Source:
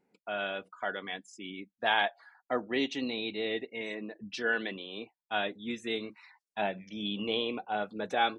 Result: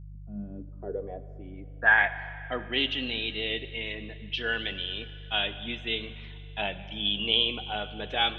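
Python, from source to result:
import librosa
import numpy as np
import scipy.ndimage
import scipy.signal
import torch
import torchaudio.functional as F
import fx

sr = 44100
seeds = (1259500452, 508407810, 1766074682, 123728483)

y = fx.filter_sweep_lowpass(x, sr, from_hz=190.0, to_hz=3100.0, start_s=0.33, end_s=2.35, q=7.0)
y = fx.rev_schroeder(y, sr, rt60_s=2.6, comb_ms=31, drr_db=12.5)
y = fx.dmg_buzz(y, sr, base_hz=50.0, harmonics=3, level_db=-41.0, tilt_db=-5, odd_only=False)
y = y * librosa.db_to_amplitude(-2.5)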